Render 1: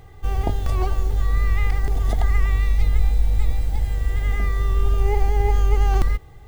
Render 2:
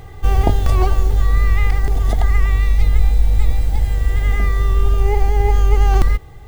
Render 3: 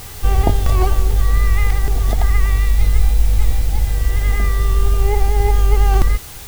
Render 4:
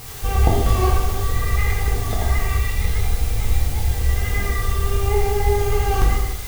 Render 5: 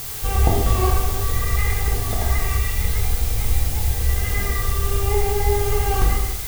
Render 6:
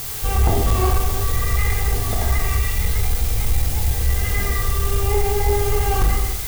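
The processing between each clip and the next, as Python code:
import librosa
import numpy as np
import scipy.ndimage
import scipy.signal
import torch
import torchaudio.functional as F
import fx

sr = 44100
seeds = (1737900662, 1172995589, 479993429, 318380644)

y1 = fx.rider(x, sr, range_db=10, speed_s=2.0)
y1 = y1 * 10.0 ** (4.5 / 20.0)
y2 = fx.quant_dither(y1, sr, seeds[0], bits=6, dither='triangular')
y3 = fx.rev_gated(y2, sr, seeds[1], gate_ms=370, shape='falling', drr_db=-4.0)
y3 = y3 * 10.0 ** (-5.0 / 20.0)
y4 = fx.dmg_noise_colour(y3, sr, seeds[2], colour='blue', level_db=-31.0)
y4 = y4 * 10.0 ** (-1.0 / 20.0)
y5 = 10.0 ** (-10.0 / 20.0) * np.tanh(y4 / 10.0 ** (-10.0 / 20.0))
y5 = y5 * 10.0 ** (2.0 / 20.0)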